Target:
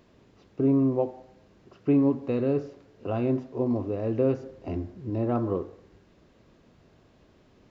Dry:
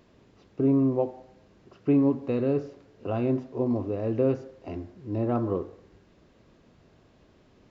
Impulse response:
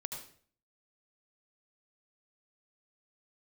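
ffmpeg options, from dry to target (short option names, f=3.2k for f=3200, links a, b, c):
-filter_complex "[0:a]asettb=1/sr,asplit=3[a][b][c];[a]atrim=end=4.434[d];[b]atrim=start=4.43:end=5.1,asetpts=PTS-STARTPTS,afade=t=in:d=0.004:c=qsin,afade=t=out:st=0.666:d=0.004:c=qsin,lowshelf=f=370:g=6.5[e];[c]atrim=start=5.096[f];[d][e]acrossfade=d=0.004:c1=hsin:c2=qsin[g];[g][f]acrossfade=d=0.004:c1=qsin:c2=hsin"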